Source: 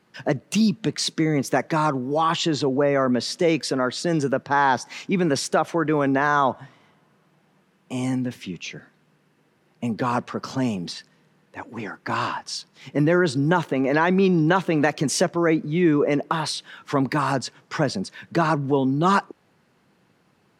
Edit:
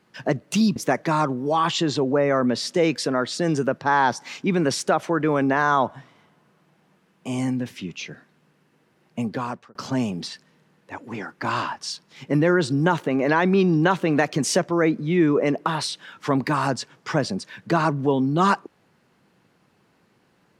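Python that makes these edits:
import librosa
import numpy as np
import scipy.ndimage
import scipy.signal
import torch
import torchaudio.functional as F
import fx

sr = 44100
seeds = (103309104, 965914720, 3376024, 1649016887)

y = fx.edit(x, sr, fx.cut(start_s=0.76, length_s=0.65),
    fx.fade_out_span(start_s=9.85, length_s=0.55), tone=tone)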